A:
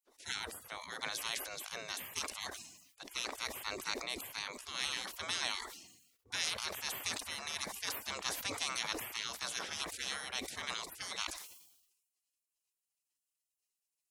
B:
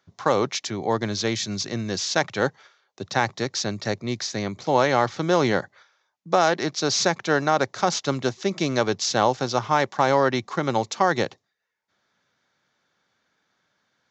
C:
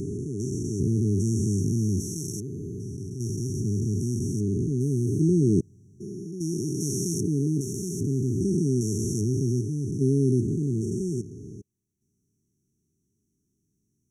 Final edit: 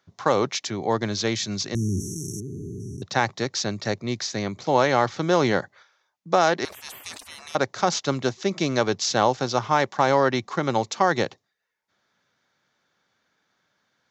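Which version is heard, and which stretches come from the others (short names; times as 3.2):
B
1.75–3.02 from C
6.65–7.55 from A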